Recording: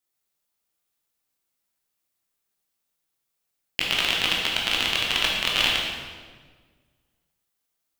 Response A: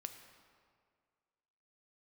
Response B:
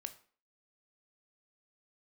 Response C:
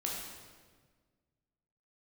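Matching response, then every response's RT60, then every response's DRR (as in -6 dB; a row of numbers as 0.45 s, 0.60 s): C; 2.0 s, 0.45 s, 1.5 s; 6.5 dB, 8.5 dB, -3.0 dB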